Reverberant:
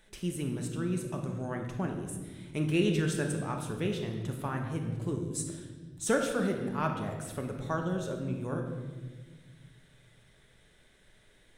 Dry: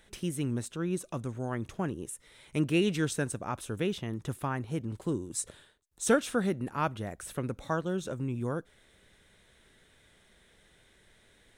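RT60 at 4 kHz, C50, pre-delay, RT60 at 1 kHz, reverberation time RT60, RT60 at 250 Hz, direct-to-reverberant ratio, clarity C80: 1.2 s, 5.0 dB, 3 ms, 1.2 s, 1.5 s, 2.4 s, 2.0 dB, 7.0 dB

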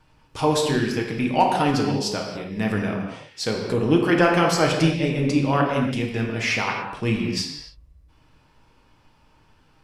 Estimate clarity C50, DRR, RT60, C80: 3.0 dB, -0.5 dB, not exponential, 4.5 dB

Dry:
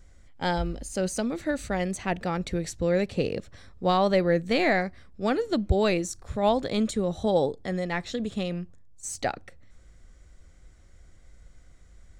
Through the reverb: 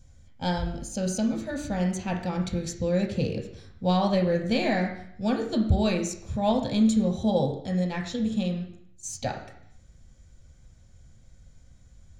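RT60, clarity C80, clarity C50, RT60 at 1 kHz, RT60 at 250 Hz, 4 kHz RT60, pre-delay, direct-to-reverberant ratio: 0.70 s, 10.0 dB, 7.0 dB, 0.65 s, 0.70 s, 0.65 s, 3 ms, 1.5 dB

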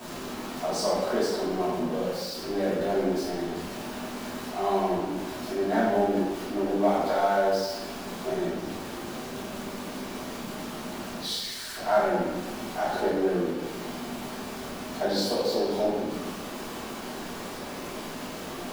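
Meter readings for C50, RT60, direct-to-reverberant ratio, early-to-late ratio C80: 0.0 dB, 1.2 s, -12.0 dB, 2.5 dB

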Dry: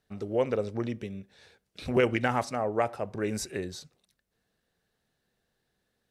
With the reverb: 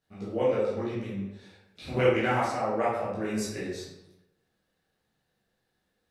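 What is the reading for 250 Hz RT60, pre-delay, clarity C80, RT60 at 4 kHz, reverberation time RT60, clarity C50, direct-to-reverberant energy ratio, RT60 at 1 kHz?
1.0 s, 11 ms, 4.5 dB, 0.60 s, 0.95 s, 0.5 dB, -9.0 dB, 0.95 s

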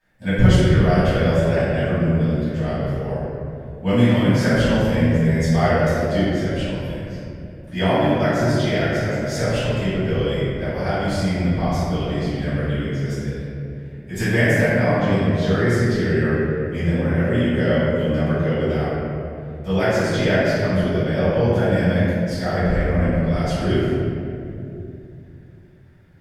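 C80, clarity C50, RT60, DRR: -2.5 dB, -4.5 dB, 2.7 s, -16.0 dB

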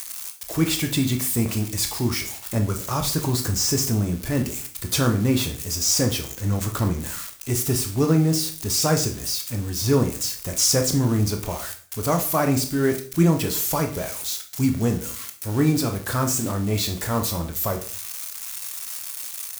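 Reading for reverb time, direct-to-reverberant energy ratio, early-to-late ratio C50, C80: 0.45 s, 4.0 dB, 10.5 dB, 15.5 dB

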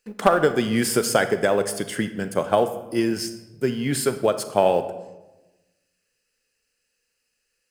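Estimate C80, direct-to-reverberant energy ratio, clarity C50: 14.0 dB, 10.0 dB, 11.5 dB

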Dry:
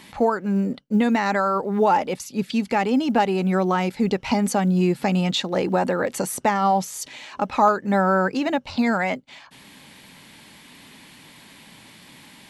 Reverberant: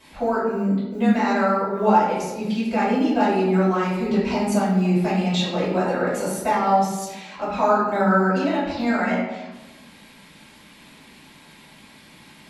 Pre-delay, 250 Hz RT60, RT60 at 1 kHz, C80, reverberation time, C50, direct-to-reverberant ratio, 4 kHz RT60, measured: 3 ms, 1.5 s, 1.1 s, 4.0 dB, 1.1 s, 1.0 dB, -12.0 dB, 0.65 s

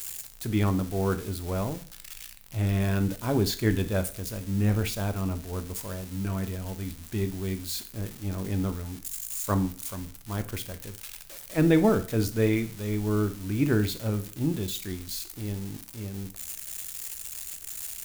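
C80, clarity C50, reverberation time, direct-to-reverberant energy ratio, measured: 20.0 dB, 14.5 dB, 0.45 s, 9.0 dB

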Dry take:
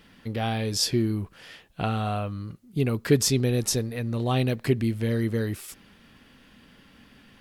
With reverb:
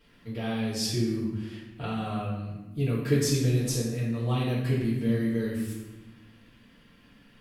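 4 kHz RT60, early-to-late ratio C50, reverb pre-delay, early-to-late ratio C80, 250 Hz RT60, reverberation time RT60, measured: 0.75 s, 1.5 dB, 3 ms, 4.5 dB, 1.7 s, 1.1 s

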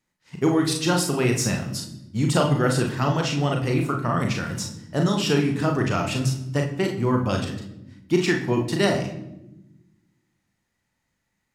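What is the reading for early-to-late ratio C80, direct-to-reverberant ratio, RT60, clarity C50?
11.0 dB, 1.5 dB, not exponential, 6.5 dB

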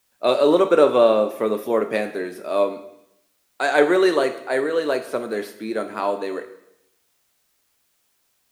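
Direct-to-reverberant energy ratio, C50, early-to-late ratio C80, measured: 7.5 dB, 11.5 dB, 14.0 dB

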